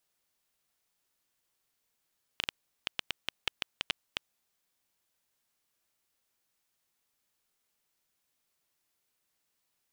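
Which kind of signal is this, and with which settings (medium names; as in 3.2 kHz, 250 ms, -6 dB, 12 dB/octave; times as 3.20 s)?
random clicks 6.1 per s -12 dBFS 2.29 s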